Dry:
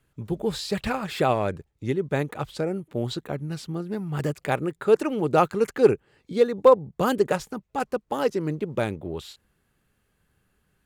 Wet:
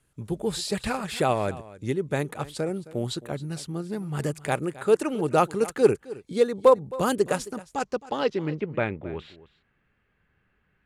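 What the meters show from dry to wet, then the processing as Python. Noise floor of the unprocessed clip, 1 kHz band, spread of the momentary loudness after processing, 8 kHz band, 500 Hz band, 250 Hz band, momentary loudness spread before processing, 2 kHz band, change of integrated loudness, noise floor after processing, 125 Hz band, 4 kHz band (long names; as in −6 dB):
−72 dBFS, −1.5 dB, 11 LU, +5.0 dB, −1.5 dB, −1.5 dB, 12 LU, −0.5 dB, −1.5 dB, −71 dBFS, −1.5 dB, +0.5 dB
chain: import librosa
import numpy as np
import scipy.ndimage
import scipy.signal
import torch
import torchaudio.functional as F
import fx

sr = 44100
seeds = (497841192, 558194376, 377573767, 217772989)

p1 = fx.high_shelf(x, sr, hz=7000.0, db=4.5)
p2 = fx.filter_sweep_lowpass(p1, sr, from_hz=10000.0, to_hz=2200.0, start_s=7.51, end_s=8.67, q=2.0)
p3 = p2 + fx.echo_single(p2, sr, ms=266, db=-18.0, dry=0)
y = p3 * librosa.db_to_amplitude(-1.5)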